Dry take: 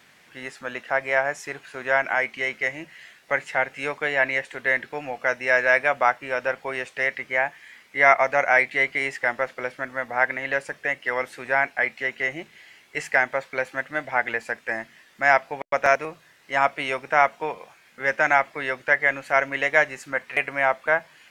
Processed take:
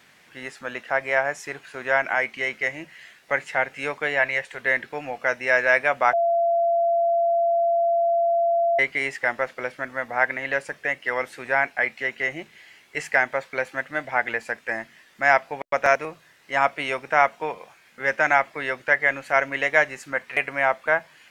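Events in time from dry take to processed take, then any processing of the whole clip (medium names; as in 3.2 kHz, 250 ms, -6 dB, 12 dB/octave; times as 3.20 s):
4.19–4.61 s: peaking EQ 290 Hz -10.5 dB 0.54 oct
6.13–8.79 s: bleep 681 Hz -17.5 dBFS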